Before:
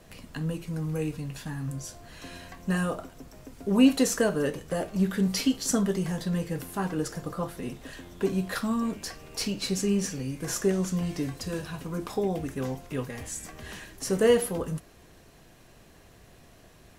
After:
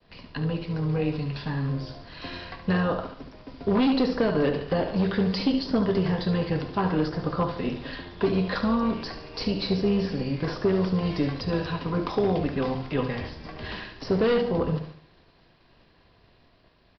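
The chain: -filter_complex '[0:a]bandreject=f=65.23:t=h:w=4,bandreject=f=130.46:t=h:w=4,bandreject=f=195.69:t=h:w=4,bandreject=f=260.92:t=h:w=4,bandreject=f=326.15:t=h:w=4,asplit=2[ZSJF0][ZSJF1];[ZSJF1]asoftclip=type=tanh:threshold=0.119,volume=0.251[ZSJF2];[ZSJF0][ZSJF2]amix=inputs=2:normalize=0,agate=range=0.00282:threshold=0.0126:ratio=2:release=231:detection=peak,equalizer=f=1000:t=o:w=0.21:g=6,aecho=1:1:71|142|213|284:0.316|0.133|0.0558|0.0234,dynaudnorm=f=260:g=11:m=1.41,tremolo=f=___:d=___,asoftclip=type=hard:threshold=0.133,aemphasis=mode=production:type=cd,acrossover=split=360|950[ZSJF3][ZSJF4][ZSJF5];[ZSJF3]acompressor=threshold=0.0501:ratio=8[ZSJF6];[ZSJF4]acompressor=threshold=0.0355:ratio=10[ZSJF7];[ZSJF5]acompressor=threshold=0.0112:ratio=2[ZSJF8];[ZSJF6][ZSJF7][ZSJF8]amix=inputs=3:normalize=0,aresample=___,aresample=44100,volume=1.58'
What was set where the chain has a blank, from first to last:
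280, 0.462, 11025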